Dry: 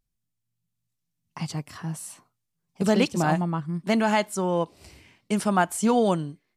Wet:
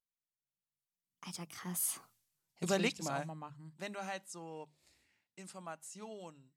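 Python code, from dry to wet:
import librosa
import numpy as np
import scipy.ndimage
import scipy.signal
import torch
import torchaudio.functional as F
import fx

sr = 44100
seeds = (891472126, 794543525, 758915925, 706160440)

y = fx.doppler_pass(x, sr, speed_mps=35, closest_m=3.3, pass_at_s=2.08)
y = fx.tilt_eq(y, sr, slope=2.0)
y = fx.hum_notches(y, sr, base_hz=50, count=4)
y = fx.upward_expand(y, sr, threshold_db=-41.0, expansion=1.5)
y = y * 10.0 ** (9.0 / 20.0)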